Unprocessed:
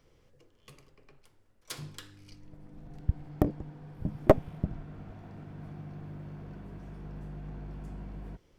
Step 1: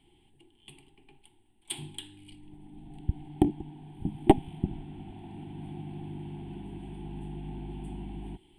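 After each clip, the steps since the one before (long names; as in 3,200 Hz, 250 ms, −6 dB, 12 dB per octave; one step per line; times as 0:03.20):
in parallel at +2.5 dB: speech leveller within 4 dB 2 s
on the sum: drawn EQ curve 130 Hz 0 dB, 370 Hz +9 dB, 530 Hz −24 dB, 820 Hz +12 dB, 1,200 Hz −16 dB, 3,200 Hz +13 dB, 6,000 Hz −25 dB, 8,700 Hz +15 dB, 14,000 Hz −10 dB
level −9 dB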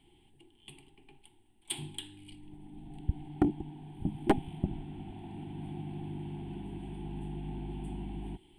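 soft clipping −16 dBFS, distortion −7 dB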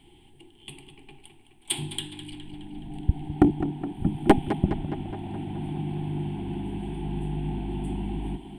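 tape delay 209 ms, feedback 69%, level −9 dB, low-pass 4,200 Hz
level +8.5 dB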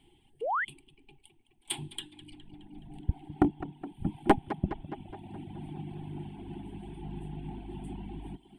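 sound drawn into the spectrogram rise, 0:00.41–0:00.65, 400–2,200 Hz −27 dBFS
reverb reduction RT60 1.1 s
dynamic equaliser 1,100 Hz, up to +6 dB, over −43 dBFS, Q 0.81
level −7 dB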